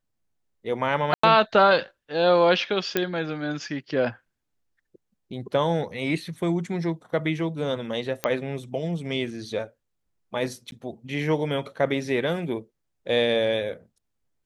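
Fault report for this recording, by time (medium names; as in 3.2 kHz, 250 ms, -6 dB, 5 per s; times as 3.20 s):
1.14–1.23 s: dropout 94 ms
2.97 s: pop -8 dBFS
8.24 s: pop -8 dBFS
10.71–10.72 s: dropout 11 ms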